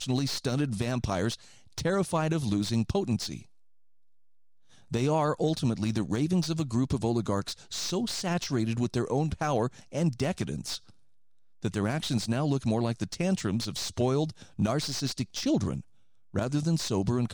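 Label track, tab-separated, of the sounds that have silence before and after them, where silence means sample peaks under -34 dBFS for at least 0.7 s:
4.920000	10.770000	sound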